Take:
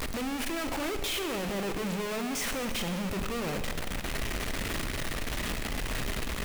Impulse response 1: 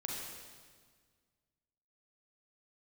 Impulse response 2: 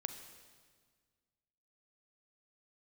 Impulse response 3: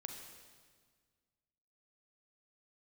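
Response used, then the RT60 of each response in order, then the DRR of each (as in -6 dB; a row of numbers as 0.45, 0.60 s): 2; 1.7, 1.7, 1.7 s; -2.5, 7.5, 3.0 dB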